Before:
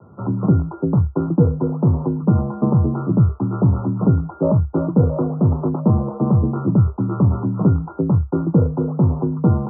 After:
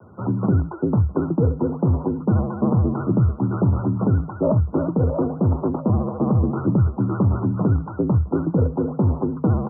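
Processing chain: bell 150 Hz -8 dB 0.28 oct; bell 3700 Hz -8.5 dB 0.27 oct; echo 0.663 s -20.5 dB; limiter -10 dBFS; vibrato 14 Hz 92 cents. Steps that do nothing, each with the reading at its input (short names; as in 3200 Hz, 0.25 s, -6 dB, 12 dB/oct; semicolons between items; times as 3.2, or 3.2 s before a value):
bell 3700 Hz: input band ends at 1200 Hz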